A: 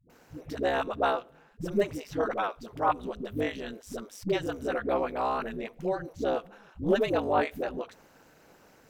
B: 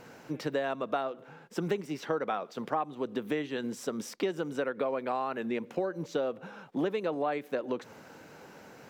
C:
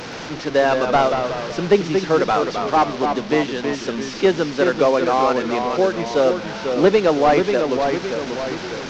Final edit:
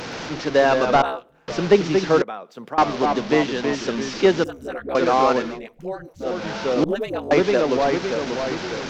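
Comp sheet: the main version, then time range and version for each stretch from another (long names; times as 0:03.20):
C
0:01.02–0:01.48: punch in from A
0:02.22–0:02.78: punch in from B
0:04.44–0:04.95: punch in from A
0:05.48–0:06.32: punch in from A, crossfade 0.24 s
0:06.84–0:07.31: punch in from A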